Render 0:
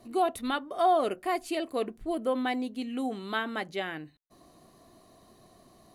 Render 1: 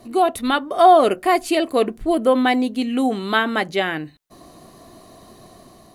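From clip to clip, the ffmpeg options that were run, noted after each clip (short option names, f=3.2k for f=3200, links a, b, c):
-af "dynaudnorm=f=210:g=5:m=3.5dB,volume=9dB"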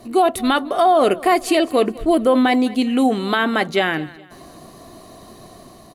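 -af "alimiter=limit=-10.5dB:level=0:latency=1:release=14,aecho=1:1:208|416|624:0.1|0.037|0.0137,volume=3.5dB"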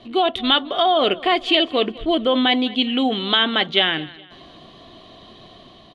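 -af "lowpass=f=3.3k:t=q:w=9.6,volume=-4dB"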